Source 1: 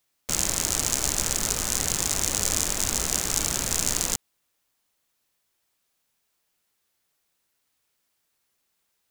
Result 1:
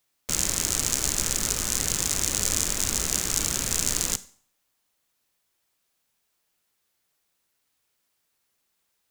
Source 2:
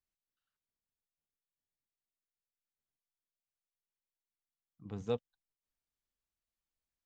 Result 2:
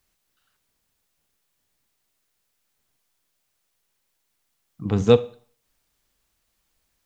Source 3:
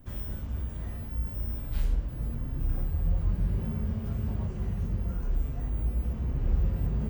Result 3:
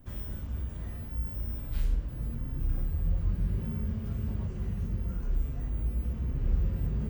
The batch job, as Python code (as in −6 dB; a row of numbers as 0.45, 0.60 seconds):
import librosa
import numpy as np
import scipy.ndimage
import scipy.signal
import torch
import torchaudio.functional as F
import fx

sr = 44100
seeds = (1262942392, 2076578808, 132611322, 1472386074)

y = fx.rev_schroeder(x, sr, rt60_s=0.46, comb_ms=31, drr_db=16.5)
y = fx.dynamic_eq(y, sr, hz=760.0, q=1.5, threshold_db=-52.0, ratio=4.0, max_db=-5)
y = y * 10.0 ** (-30 / 20.0) / np.sqrt(np.mean(np.square(y)))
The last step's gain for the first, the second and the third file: 0.0, +20.5, −1.5 decibels